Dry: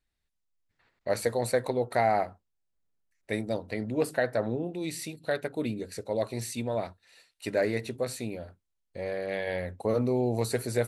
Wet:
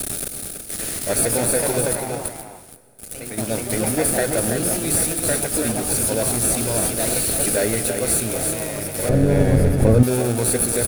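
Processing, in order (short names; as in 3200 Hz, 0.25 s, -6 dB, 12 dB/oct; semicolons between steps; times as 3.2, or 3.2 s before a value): switching spikes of -25.5 dBFS; echoes that change speed 0.259 s, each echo +2 st, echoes 2, each echo -6 dB; bell 9800 Hz +15 dB 0.37 oct; in parallel at -7 dB: sample-rate reducer 1000 Hz, jitter 0%; 1.95–3.38 on the sum: compressor 6:1, threshold -34 dBFS, peak gain reduction 15 dB; echo 0.33 s -7 dB; plate-style reverb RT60 2.4 s, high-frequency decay 0.95×, DRR 16 dB; limiter -13.5 dBFS, peak gain reduction 6.5 dB; 9.09–10.03 tilt -4 dB/oct; gain +4.5 dB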